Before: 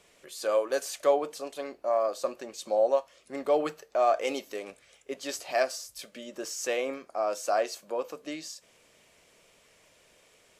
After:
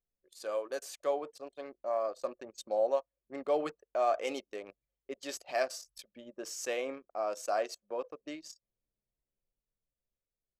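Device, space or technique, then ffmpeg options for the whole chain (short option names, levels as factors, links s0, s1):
voice memo with heavy noise removal: -af "anlmdn=0.398,dynaudnorm=f=310:g=11:m=1.58,volume=0.355"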